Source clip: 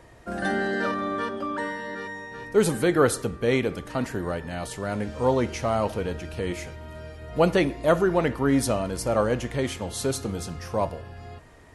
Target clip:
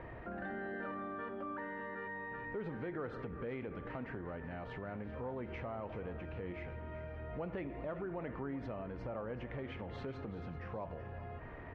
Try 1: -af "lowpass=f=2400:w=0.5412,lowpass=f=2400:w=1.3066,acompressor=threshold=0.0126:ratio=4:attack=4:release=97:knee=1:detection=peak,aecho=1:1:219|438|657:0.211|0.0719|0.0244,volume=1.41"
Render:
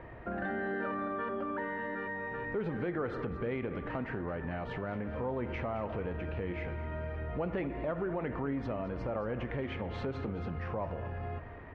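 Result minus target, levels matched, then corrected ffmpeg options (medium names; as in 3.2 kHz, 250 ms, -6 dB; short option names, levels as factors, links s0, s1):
echo 164 ms early; compression: peak gain reduction -7 dB
-af "lowpass=f=2400:w=0.5412,lowpass=f=2400:w=1.3066,acompressor=threshold=0.00447:ratio=4:attack=4:release=97:knee=1:detection=peak,aecho=1:1:383|766|1149:0.211|0.0719|0.0244,volume=1.41"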